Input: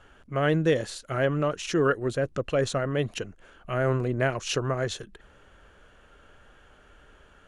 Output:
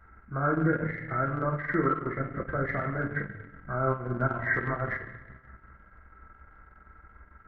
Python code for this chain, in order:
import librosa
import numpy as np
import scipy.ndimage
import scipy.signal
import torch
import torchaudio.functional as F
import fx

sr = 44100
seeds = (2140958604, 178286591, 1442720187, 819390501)

y = fx.freq_compress(x, sr, knee_hz=1300.0, ratio=4.0)
y = fx.peak_eq(y, sr, hz=68.0, db=4.0, octaves=0.77)
y = fx.rev_fdn(y, sr, rt60_s=1.3, lf_ratio=1.35, hf_ratio=0.95, size_ms=90.0, drr_db=-0.5)
y = fx.transient(y, sr, attack_db=2, sustain_db=-12)
y = fx.peak_eq(y, sr, hz=510.0, db=-9.5, octaves=1.0)
y = F.gain(torch.from_numpy(y), -2.5).numpy()